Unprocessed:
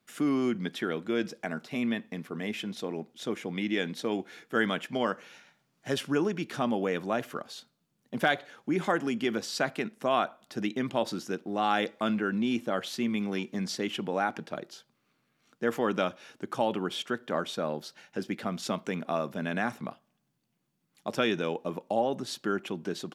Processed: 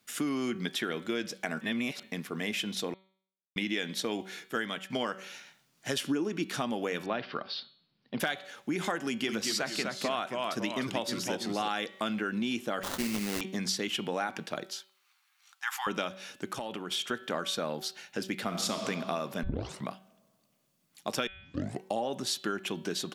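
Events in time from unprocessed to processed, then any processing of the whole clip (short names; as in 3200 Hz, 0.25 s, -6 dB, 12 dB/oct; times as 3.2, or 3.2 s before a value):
1.61–2.03 reverse
2.94–3.56 mute
4.26–4.9 fade out equal-power, to -13 dB
6.04–6.5 bell 290 Hz +10 dB 1 oct
7.06–8.2 steep low-pass 5000 Hz 72 dB/oct
9.06–11.68 echoes that change speed 0.216 s, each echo -1 st, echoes 2, each echo -6 dB
12.83–13.41 sample-rate reducer 2400 Hz, jitter 20%
14.72–15.87 brick-wall FIR high-pass 740 Hz
16.47–17.11 compressor, threshold -34 dBFS
18.42–18.82 reverb throw, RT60 2.4 s, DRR 4 dB
19.43 tape start 0.43 s
21.27 tape start 0.64 s
whole clip: high shelf 2000 Hz +10 dB; de-hum 190.1 Hz, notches 23; compressor 6:1, threshold -28 dBFS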